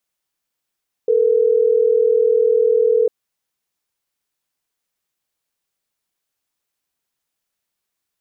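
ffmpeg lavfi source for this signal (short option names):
-f lavfi -i "aevalsrc='0.188*(sin(2*PI*440*t)+sin(2*PI*480*t))*clip(min(mod(t,6),2-mod(t,6))/0.005,0,1)':d=3.12:s=44100"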